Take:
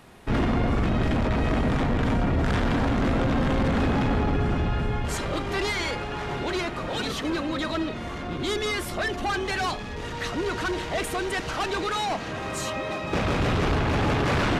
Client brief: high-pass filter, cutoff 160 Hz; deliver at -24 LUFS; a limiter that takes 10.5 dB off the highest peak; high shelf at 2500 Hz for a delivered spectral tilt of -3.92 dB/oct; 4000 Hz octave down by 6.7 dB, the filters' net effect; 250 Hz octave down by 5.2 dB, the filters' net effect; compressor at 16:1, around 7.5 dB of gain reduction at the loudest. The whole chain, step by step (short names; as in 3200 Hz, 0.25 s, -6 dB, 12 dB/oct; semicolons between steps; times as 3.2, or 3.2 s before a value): HPF 160 Hz; bell 250 Hz -5.5 dB; high shelf 2500 Hz -6 dB; bell 4000 Hz -3.5 dB; compressor 16:1, threshold -31 dBFS; gain +15.5 dB; limiter -15.5 dBFS